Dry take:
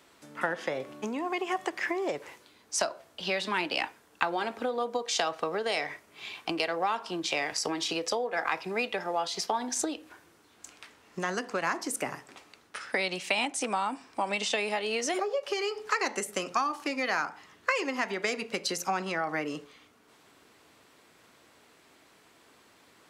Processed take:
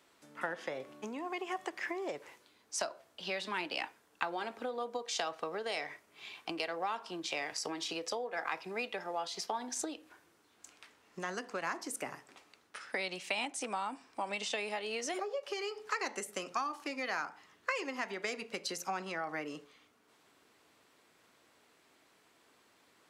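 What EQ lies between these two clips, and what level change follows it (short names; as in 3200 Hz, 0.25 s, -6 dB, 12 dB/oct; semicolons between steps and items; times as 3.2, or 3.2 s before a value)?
low shelf 150 Hz -5 dB; -7.0 dB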